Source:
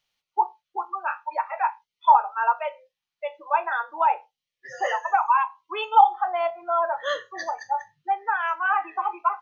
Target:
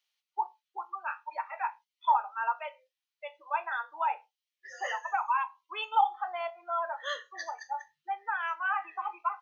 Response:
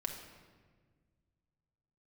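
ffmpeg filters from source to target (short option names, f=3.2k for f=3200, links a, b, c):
-af "highpass=f=1.5k:p=1,volume=-3.5dB"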